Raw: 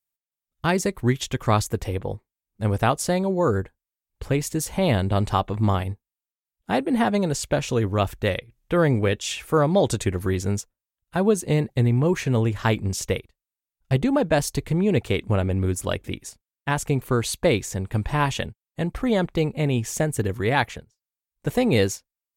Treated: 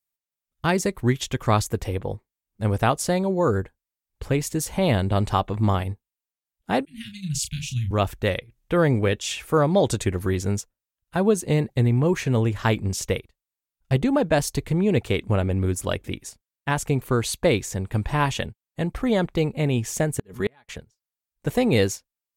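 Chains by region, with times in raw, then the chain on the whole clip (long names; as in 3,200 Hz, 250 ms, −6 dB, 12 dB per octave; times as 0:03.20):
0:06.85–0:07.91: elliptic band-stop filter 160–2,600 Hz, stop band 60 dB + double-tracking delay 32 ms −6.5 dB + multiband upward and downward expander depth 70%
0:20.19–0:20.69: comb filter 4.8 ms, depth 54% + gate with flip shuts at −12 dBFS, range −37 dB
whole clip: no processing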